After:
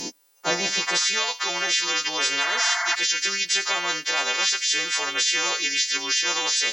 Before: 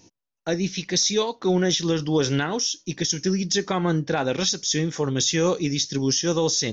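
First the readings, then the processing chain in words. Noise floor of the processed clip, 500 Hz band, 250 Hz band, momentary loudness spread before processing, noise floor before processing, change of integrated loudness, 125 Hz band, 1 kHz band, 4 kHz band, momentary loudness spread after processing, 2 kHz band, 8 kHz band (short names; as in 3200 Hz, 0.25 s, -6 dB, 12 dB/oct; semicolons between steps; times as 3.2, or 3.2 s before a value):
-43 dBFS, -10.0 dB, -16.0 dB, 5 LU, -83 dBFS, +1.5 dB, under -20 dB, +2.5 dB, +5.0 dB, 3 LU, +10.0 dB, n/a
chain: frequency quantiser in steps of 2 st; spectral repair 2.46–2.92, 630–2200 Hz before; low shelf 110 Hz -8.5 dB; high-pass sweep 210 Hz -> 2300 Hz, 0.01–1.27; spectral compressor 4:1; gain -7.5 dB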